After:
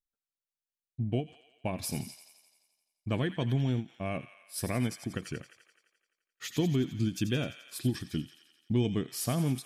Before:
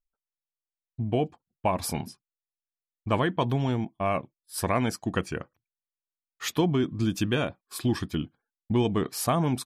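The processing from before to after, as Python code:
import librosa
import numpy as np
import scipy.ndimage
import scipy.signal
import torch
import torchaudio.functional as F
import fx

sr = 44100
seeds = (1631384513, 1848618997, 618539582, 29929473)

y = fx.graphic_eq(x, sr, hz=(125, 250, 1000), db=(8, 4, -12))
y = fx.echo_wet_highpass(y, sr, ms=86, feedback_pct=67, hz=1400.0, wet_db=-10)
y = fx.wow_flutter(y, sr, seeds[0], rate_hz=2.1, depth_cents=21.0)
y = fx.low_shelf(y, sr, hz=390.0, db=-6.5)
y = fx.end_taper(y, sr, db_per_s=270.0)
y = y * librosa.db_to_amplitude(-3.5)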